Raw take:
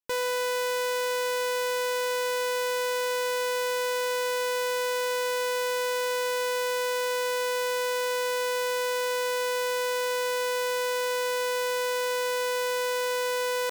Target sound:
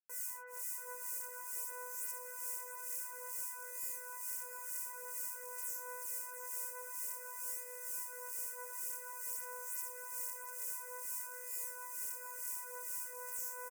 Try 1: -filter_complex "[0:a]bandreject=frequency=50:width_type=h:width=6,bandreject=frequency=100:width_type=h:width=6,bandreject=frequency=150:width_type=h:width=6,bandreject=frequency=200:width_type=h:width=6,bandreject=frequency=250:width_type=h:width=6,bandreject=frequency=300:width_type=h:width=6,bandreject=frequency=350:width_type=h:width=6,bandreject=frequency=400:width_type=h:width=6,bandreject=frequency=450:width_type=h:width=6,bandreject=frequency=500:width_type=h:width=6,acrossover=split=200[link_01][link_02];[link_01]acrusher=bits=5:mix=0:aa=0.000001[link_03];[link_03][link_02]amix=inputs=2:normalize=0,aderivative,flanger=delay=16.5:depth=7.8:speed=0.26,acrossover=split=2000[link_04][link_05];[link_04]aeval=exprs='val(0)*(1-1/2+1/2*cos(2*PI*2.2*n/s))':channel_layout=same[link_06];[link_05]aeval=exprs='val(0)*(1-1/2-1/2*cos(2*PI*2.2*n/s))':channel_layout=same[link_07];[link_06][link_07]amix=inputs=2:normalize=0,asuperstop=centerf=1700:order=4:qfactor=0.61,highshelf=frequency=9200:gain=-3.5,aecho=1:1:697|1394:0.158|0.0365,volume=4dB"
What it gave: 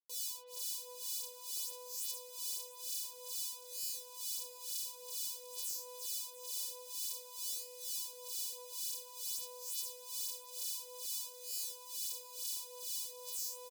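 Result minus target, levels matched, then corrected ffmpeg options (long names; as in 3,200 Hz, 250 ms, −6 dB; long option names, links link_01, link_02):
4,000 Hz band +15.5 dB; echo-to-direct −6.5 dB
-filter_complex "[0:a]bandreject=frequency=50:width_type=h:width=6,bandreject=frequency=100:width_type=h:width=6,bandreject=frequency=150:width_type=h:width=6,bandreject=frequency=200:width_type=h:width=6,bandreject=frequency=250:width_type=h:width=6,bandreject=frequency=300:width_type=h:width=6,bandreject=frequency=350:width_type=h:width=6,bandreject=frequency=400:width_type=h:width=6,bandreject=frequency=450:width_type=h:width=6,bandreject=frequency=500:width_type=h:width=6,acrossover=split=200[link_01][link_02];[link_01]acrusher=bits=5:mix=0:aa=0.000001[link_03];[link_03][link_02]amix=inputs=2:normalize=0,aderivative,flanger=delay=16.5:depth=7.8:speed=0.26,acrossover=split=2000[link_04][link_05];[link_04]aeval=exprs='val(0)*(1-1/2+1/2*cos(2*PI*2.2*n/s))':channel_layout=same[link_06];[link_05]aeval=exprs='val(0)*(1-1/2-1/2*cos(2*PI*2.2*n/s))':channel_layout=same[link_07];[link_06][link_07]amix=inputs=2:normalize=0,asuperstop=centerf=3600:order=4:qfactor=0.61,highshelf=frequency=9200:gain=-3.5,aecho=1:1:697|1394|2091:0.376|0.0864|0.0199,volume=4dB"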